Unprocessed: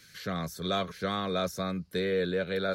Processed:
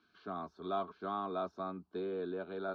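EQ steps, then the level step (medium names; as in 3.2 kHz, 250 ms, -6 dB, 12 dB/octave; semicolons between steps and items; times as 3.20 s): band-pass filter 760 Hz, Q 0.61; distance through air 290 m; static phaser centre 520 Hz, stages 6; +1.0 dB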